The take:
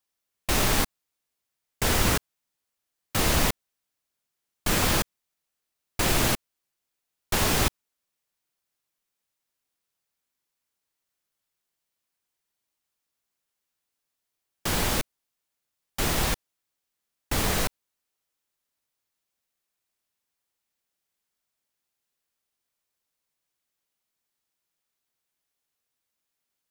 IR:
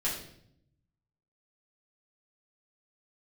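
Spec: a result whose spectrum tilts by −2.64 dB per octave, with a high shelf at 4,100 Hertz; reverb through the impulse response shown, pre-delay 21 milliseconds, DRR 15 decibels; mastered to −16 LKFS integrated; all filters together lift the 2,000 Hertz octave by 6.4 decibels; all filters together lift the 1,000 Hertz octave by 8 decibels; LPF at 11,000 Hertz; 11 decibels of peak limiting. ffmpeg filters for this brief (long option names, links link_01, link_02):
-filter_complex "[0:a]lowpass=11000,equalizer=frequency=1000:width_type=o:gain=8.5,equalizer=frequency=2000:width_type=o:gain=3.5,highshelf=frequency=4100:gain=8.5,alimiter=limit=-16dB:level=0:latency=1,asplit=2[link_01][link_02];[1:a]atrim=start_sample=2205,adelay=21[link_03];[link_02][link_03]afir=irnorm=-1:irlink=0,volume=-21.5dB[link_04];[link_01][link_04]amix=inputs=2:normalize=0,volume=11dB"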